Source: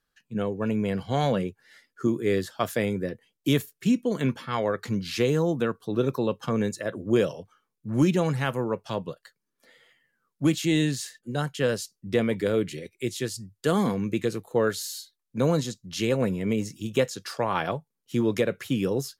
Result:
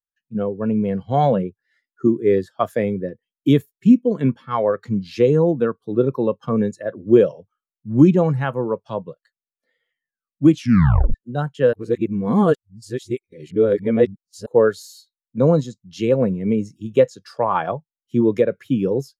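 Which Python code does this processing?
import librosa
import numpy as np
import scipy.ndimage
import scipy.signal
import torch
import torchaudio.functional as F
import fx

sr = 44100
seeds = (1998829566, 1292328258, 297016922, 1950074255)

y = fx.edit(x, sr, fx.tape_stop(start_s=10.53, length_s=0.61),
    fx.reverse_span(start_s=11.73, length_s=2.73), tone=tone)
y = fx.dynamic_eq(y, sr, hz=910.0, q=1.0, threshold_db=-36.0, ratio=4.0, max_db=4)
y = fx.spectral_expand(y, sr, expansion=1.5)
y = y * 10.0 ** (7.5 / 20.0)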